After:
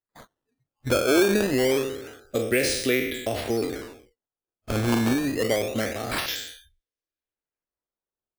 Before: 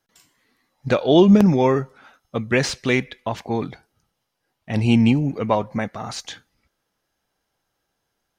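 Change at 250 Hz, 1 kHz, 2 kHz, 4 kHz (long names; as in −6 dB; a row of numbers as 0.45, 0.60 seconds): −7.5, −7.0, 0.0, +0.5 decibels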